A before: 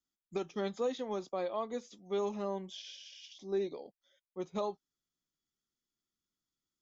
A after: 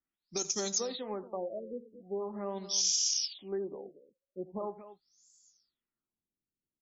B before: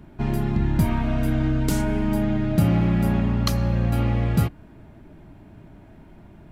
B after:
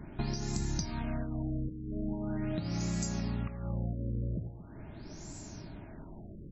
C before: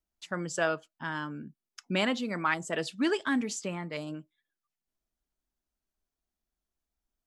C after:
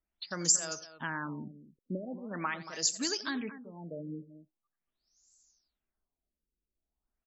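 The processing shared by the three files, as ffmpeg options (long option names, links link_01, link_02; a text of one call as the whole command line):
ffmpeg -i in.wav -filter_complex "[0:a]acrossover=split=9400[link_01][link_02];[link_02]acompressor=threshold=-52dB:ratio=4:attack=1:release=60[link_03];[link_01][link_03]amix=inputs=2:normalize=0,aexciter=amount=7.4:drive=8:freq=4800,highshelf=frequency=6100:gain=10.5,acompressor=threshold=-30dB:ratio=12,aemphasis=mode=production:type=50fm,asplit=2[link_04][link_05];[link_05]aecho=0:1:87|229:0.15|0.211[link_06];[link_04][link_06]amix=inputs=2:normalize=0,afftfilt=real='re*lt(b*sr/1024,550*pow(7800/550,0.5+0.5*sin(2*PI*0.42*pts/sr)))':imag='im*lt(b*sr/1024,550*pow(7800/550,0.5+0.5*sin(2*PI*0.42*pts/sr)))':win_size=1024:overlap=0.75" out.wav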